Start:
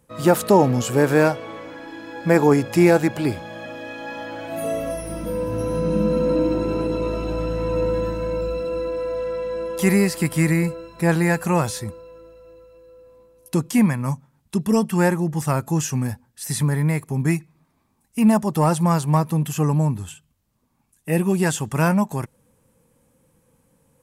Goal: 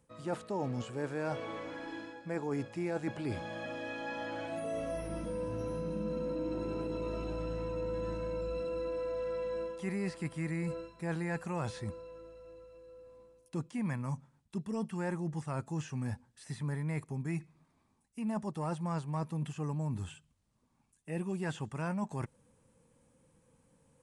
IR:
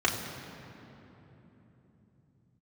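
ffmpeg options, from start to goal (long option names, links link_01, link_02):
-filter_complex "[0:a]areverse,acompressor=threshold=-28dB:ratio=5,areverse,aresample=22050,aresample=44100,acrossover=split=3600[link_01][link_02];[link_02]acompressor=threshold=-49dB:ratio=4:attack=1:release=60[link_03];[link_01][link_03]amix=inputs=2:normalize=0,volume=-6dB"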